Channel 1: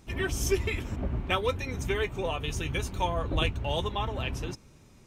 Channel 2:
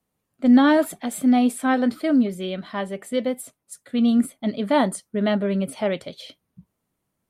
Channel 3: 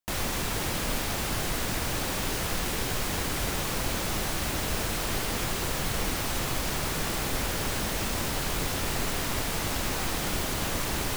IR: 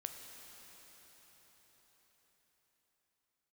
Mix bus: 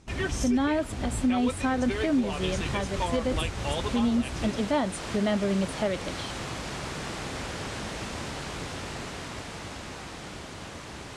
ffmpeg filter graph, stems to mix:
-filter_complex "[0:a]volume=0.5dB[a];[1:a]volume=-1dB[b];[2:a]highpass=60,highshelf=f=5.8k:g=-7,dynaudnorm=f=260:g=17:m=5.5dB,volume=-8.5dB[c];[a][b][c]amix=inputs=3:normalize=0,lowpass=f=9.3k:w=0.5412,lowpass=f=9.3k:w=1.3066,alimiter=limit=-17.5dB:level=0:latency=1:release=251"

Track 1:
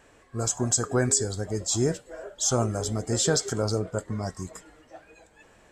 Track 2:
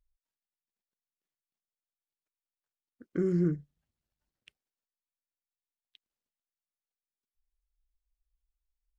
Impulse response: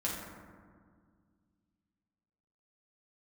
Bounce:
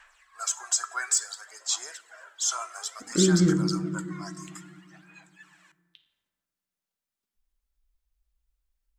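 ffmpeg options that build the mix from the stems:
-filter_complex "[0:a]highpass=f=1.1k:w=0.5412,highpass=f=1.1k:w=1.3066,highshelf=f=5k:g=-5.5,aphaser=in_gain=1:out_gain=1:delay=3:decay=0.56:speed=0.58:type=sinusoidal,volume=0.5dB,asplit=2[a][b];[b]volume=-18dB[c];[1:a]volume=1dB,asplit=2[d][e];[e]volume=-3.5dB[f];[2:a]atrim=start_sample=2205[g];[c][f]amix=inputs=2:normalize=0[h];[h][g]afir=irnorm=-1:irlink=0[i];[a][d][i]amix=inputs=3:normalize=0"

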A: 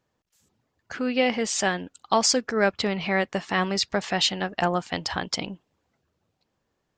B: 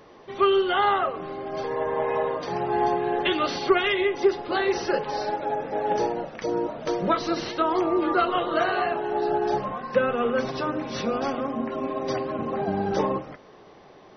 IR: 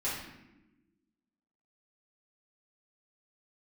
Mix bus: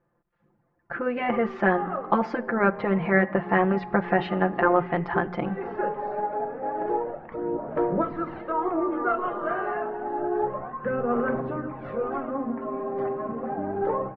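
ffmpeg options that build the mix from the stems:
-filter_complex "[0:a]aecho=1:1:5.8:0.88,volume=2.5dB,asplit=3[a][b][c];[b]volume=-22.5dB[d];[1:a]aphaser=in_gain=1:out_gain=1:delay=5:decay=0.5:speed=0.29:type=sinusoidal,adelay=900,volume=-4.5dB,asplit=2[e][f];[f]volume=-18.5dB[g];[c]apad=whole_len=664249[h];[e][h]sidechaincompress=threshold=-39dB:ratio=8:attack=6.5:release=109[i];[2:a]atrim=start_sample=2205[j];[d][g]amix=inputs=2:normalize=0[k];[k][j]afir=irnorm=-1:irlink=0[l];[a][i][l]amix=inputs=3:normalize=0,lowpass=f=1.7k:w=0.5412,lowpass=f=1.7k:w=1.3066,afftfilt=real='re*lt(hypot(re,im),1)':imag='im*lt(hypot(re,im),1)':win_size=1024:overlap=0.75,bandreject=f=60:t=h:w=6,bandreject=f=120:t=h:w=6,bandreject=f=180:t=h:w=6"

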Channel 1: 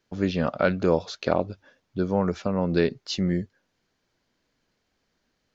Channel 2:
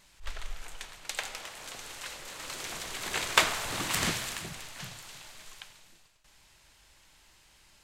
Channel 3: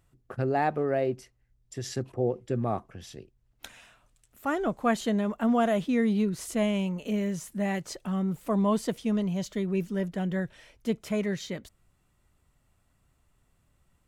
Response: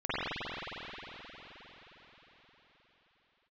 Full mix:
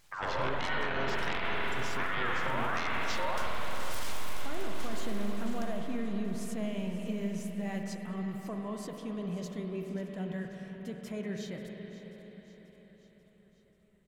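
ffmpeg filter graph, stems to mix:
-filter_complex "[0:a]highpass=74,aeval=exprs='0.531*(cos(1*acos(clip(val(0)/0.531,-1,1)))-cos(1*PI/2))+0.266*(cos(7*acos(clip(val(0)/0.531,-1,1)))-cos(7*PI/2))':c=same,aeval=exprs='val(0)*sin(2*PI*1200*n/s+1200*0.4/1.4*sin(2*PI*1.4*n/s))':c=same,volume=-13dB,asplit=3[a][b][c];[b]volume=-8dB[d];[1:a]aeval=exprs='abs(val(0))':c=same,volume=-3dB,asplit=2[e][f];[f]volume=-14dB[g];[2:a]alimiter=limit=-23dB:level=0:latency=1,volume=-9dB,asplit=3[h][i][j];[i]volume=-13.5dB[k];[j]volume=-14.5dB[l];[c]apad=whole_len=345449[m];[e][m]sidechaincompress=threshold=-49dB:ratio=8:attack=6.5:release=499[n];[3:a]atrim=start_sample=2205[o];[d][g][k]amix=inputs=3:normalize=0[p];[p][o]afir=irnorm=-1:irlink=0[q];[l]aecho=0:1:537|1074|1611|2148|2685|3222|3759|4296|4833:1|0.57|0.325|0.185|0.106|0.0602|0.0343|0.0195|0.0111[r];[a][n][h][q][r]amix=inputs=5:normalize=0,alimiter=limit=-21.5dB:level=0:latency=1:release=70"

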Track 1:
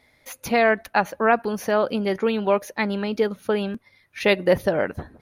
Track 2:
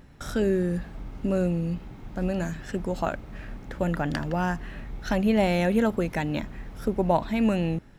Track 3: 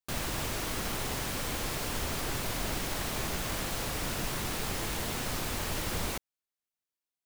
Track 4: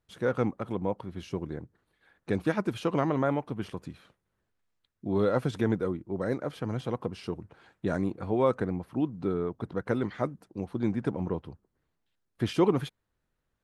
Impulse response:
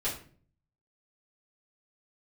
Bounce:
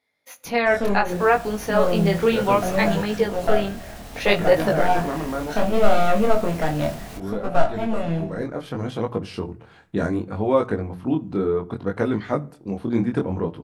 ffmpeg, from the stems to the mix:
-filter_complex "[0:a]highpass=f=270:p=1,agate=range=-9dB:threshold=-48dB:ratio=16:detection=peak,volume=-3dB,asplit=3[a][b][c];[b]volume=-18dB[d];[1:a]equalizer=f=680:w=3.1:g=14.5,aeval=exprs='clip(val(0),-1,0.0668)':c=same,adelay=450,volume=-5.5dB,asplit=2[e][f];[f]volume=-9dB[g];[2:a]alimiter=level_in=6dB:limit=-24dB:level=0:latency=1:release=142,volume=-6dB,adelay=1000,volume=-5dB[h];[3:a]bandreject=f=60:t=h:w=6,bandreject=f=120:t=h:w=6,bandreject=f=180:t=h:w=6,adelay=2100,volume=-6dB,asplit=2[i][j];[j]volume=-19.5dB[k];[c]apad=whole_len=372151[l];[e][l]sidechaincompress=threshold=-26dB:ratio=8:attack=16:release=109[m];[4:a]atrim=start_sample=2205[n];[d][g][k]amix=inputs=3:normalize=0[o];[o][n]afir=irnorm=-1:irlink=0[p];[a][m][h][i][p]amix=inputs=5:normalize=0,dynaudnorm=f=120:g=9:m=15.5dB,flanger=delay=18.5:depth=7.5:speed=0.66"

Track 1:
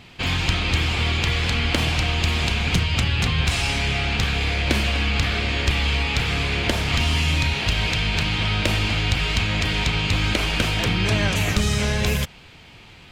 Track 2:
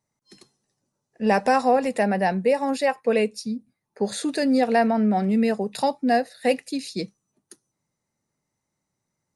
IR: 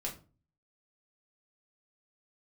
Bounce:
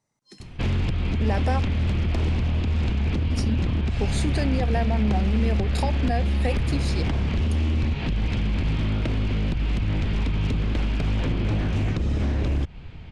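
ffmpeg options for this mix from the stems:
-filter_complex "[0:a]aemphasis=mode=reproduction:type=riaa,acompressor=threshold=-14dB:ratio=6,aeval=exprs='0.178*(abs(mod(val(0)/0.178+3,4)-2)-1)':c=same,adelay=400,volume=-3dB[a];[1:a]acompressor=threshold=-31dB:ratio=3,volume=2.5dB,asplit=3[b][c][d];[b]atrim=end=1.6,asetpts=PTS-STARTPTS,afade=t=out:st=1.596:d=0.004:c=hsin[e];[c]atrim=start=1.6:end=3.33,asetpts=PTS-STARTPTS,volume=0[f];[d]atrim=start=3.33,asetpts=PTS-STARTPTS,afade=t=in:d=0.004:c=hsin[g];[e][f][g]concat=n=3:v=0:a=1[h];[a][h]amix=inputs=2:normalize=0,lowpass=9.5k"

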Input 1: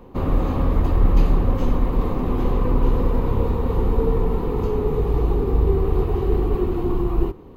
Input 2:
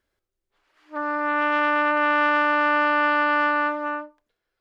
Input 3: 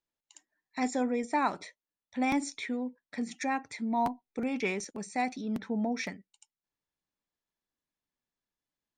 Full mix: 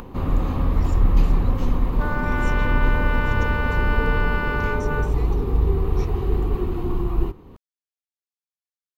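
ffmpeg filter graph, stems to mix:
-filter_complex "[0:a]acompressor=mode=upward:threshold=-27dB:ratio=2.5,volume=-0.5dB[a];[1:a]aecho=1:1:5.4:0.5,alimiter=limit=-16.5dB:level=0:latency=1,adelay=1050,volume=-0.5dB[b];[2:a]bandpass=f=5.7k:t=q:w=0.73:csg=0,volume=-7dB[c];[a][b][c]amix=inputs=3:normalize=0,equalizer=f=470:t=o:w=1.6:g=-5.5"

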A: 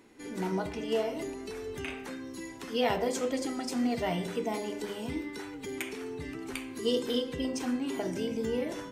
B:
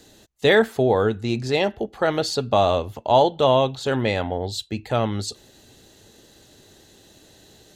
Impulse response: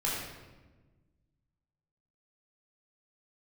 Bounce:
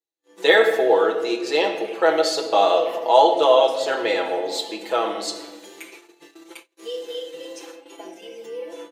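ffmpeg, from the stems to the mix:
-filter_complex "[0:a]aecho=1:1:5.8:0.83,acompressor=threshold=-33dB:ratio=2,volume=-7.5dB,asplit=2[a][b];[b]volume=-8.5dB[c];[1:a]volume=-3.5dB,asplit=3[d][e][f];[e]volume=-8.5dB[g];[f]apad=whole_len=393539[h];[a][h]sidechaincompress=threshold=-31dB:ratio=8:attack=16:release=140[i];[2:a]atrim=start_sample=2205[j];[c][g]amix=inputs=2:normalize=0[k];[k][j]afir=irnorm=-1:irlink=0[l];[i][d][l]amix=inputs=3:normalize=0,agate=range=-45dB:threshold=-40dB:ratio=16:detection=peak,highpass=f=340:w=0.5412,highpass=f=340:w=1.3066,aecho=1:1:6.1:0.87"

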